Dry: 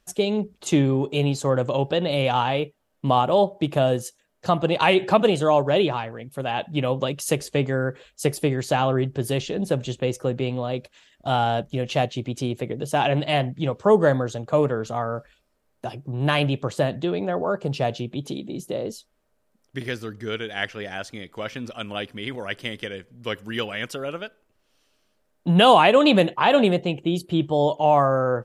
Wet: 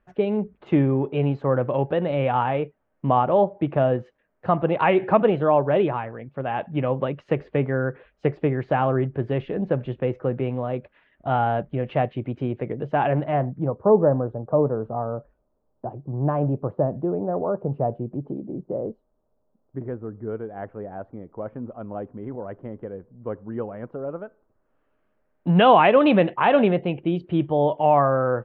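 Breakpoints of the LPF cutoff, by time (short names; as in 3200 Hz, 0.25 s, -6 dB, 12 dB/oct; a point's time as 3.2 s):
LPF 24 dB/oct
12.99 s 2100 Hz
13.86 s 1000 Hz
24.01 s 1000 Hz
25.48 s 2500 Hz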